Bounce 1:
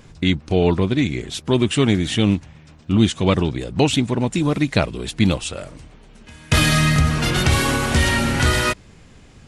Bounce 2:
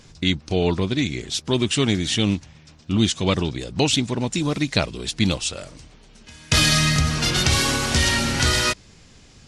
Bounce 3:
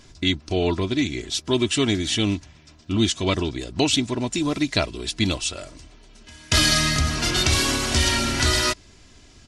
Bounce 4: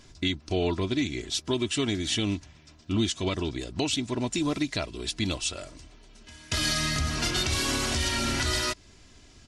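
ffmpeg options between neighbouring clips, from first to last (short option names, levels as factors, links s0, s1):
-af "equalizer=f=5300:t=o:w=1.4:g=10.5,volume=0.631"
-af "aecho=1:1:3:0.48,volume=0.841"
-af "alimiter=limit=0.224:level=0:latency=1:release=227,volume=0.668"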